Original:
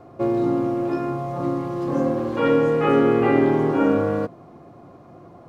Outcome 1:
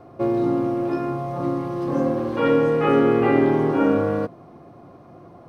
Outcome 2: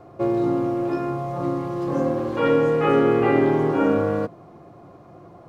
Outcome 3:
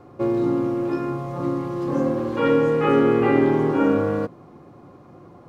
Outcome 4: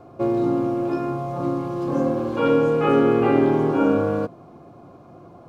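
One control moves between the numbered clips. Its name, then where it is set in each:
band-stop, frequency: 7.1 kHz, 250 Hz, 670 Hz, 1.9 kHz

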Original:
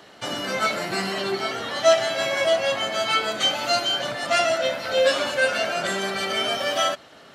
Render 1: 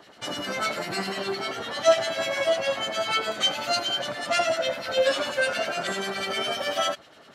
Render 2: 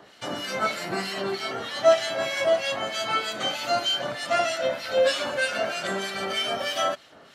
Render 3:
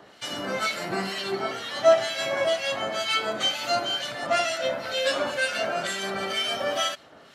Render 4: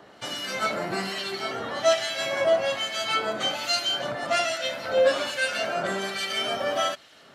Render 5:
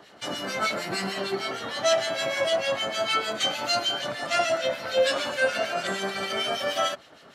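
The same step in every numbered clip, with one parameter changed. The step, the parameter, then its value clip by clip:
harmonic tremolo, rate: 10 Hz, 3.2 Hz, 2.1 Hz, 1.2 Hz, 6.6 Hz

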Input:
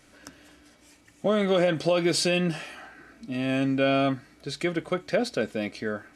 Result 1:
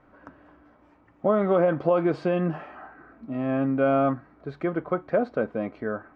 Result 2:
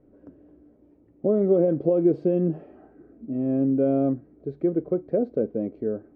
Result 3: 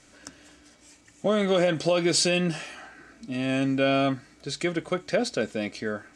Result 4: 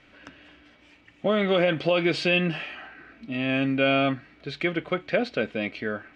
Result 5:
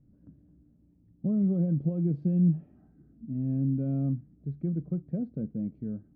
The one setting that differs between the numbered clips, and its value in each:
resonant low-pass, frequency: 1.1 kHz, 420 Hz, 7.7 kHz, 2.8 kHz, 170 Hz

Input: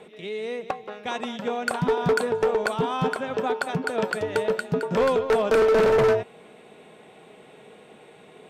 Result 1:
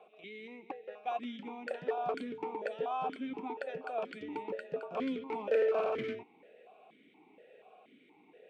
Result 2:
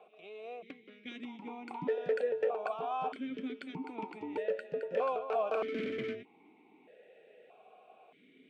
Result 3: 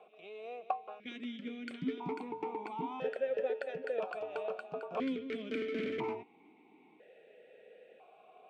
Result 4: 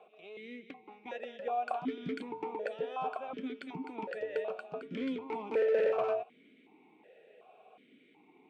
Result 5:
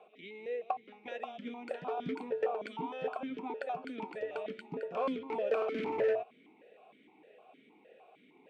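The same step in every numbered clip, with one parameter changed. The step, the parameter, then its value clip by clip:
stepped vowel filter, rate: 4.2 Hz, 1.6 Hz, 1 Hz, 2.7 Hz, 6.5 Hz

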